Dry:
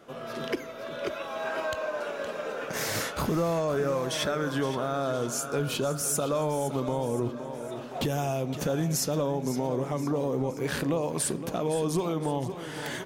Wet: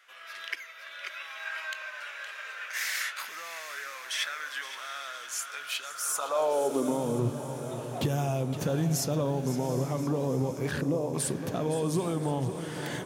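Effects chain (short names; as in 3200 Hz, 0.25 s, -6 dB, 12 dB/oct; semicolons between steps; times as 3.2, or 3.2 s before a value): 10.71–11.14 formant sharpening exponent 1.5; diffused feedback echo 0.781 s, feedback 56%, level -12 dB; high-pass sweep 1900 Hz -> 99 Hz, 5.9–7.34; gain -2.5 dB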